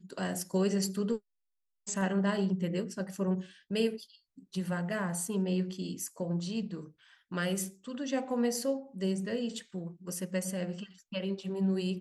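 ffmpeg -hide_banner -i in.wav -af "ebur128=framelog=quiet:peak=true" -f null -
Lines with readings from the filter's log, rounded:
Integrated loudness:
  I:         -33.7 LUFS
  Threshold: -44.0 LUFS
Loudness range:
  LRA:         2.3 LU
  Threshold: -54.2 LUFS
  LRA low:   -35.2 LUFS
  LRA high:  -32.9 LUFS
True peak:
  Peak:      -17.9 dBFS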